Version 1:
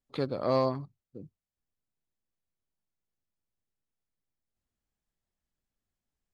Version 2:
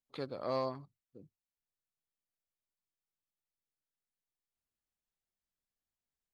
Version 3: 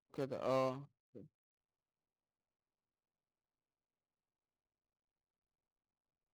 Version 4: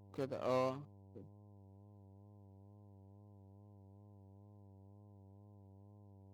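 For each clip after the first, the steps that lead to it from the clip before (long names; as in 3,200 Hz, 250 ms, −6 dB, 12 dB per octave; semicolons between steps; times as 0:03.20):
low-shelf EQ 390 Hz −6.5 dB; level −6 dB
running median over 25 samples
hum with harmonics 100 Hz, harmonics 10, −60 dBFS −7 dB per octave; tape wow and flutter 49 cents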